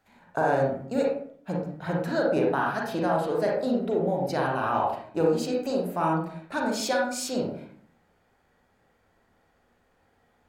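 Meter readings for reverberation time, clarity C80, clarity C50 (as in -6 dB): 0.55 s, 7.0 dB, 1.5 dB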